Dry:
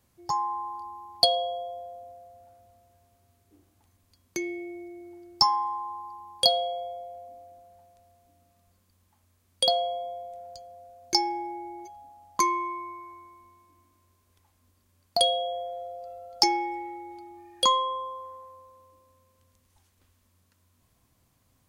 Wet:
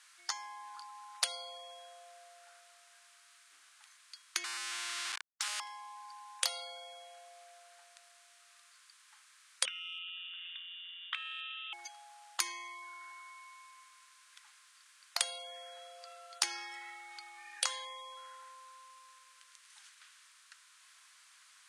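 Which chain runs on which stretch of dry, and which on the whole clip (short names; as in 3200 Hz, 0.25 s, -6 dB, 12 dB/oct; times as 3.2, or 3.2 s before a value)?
4.44–5.6 compressor, threshold -35 dBFS + Schmitt trigger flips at -43.5 dBFS
9.65–11.73 inverted band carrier 3500 Hz + bell 550 Hz -6 dB 0.74 oct + compressor, threshold -29 dBFS
whole clip: elliptic band-pass 1400–9500 Hz, stop band 80 dB; tilt -1.5 dB/oct; spectral compressor 4:1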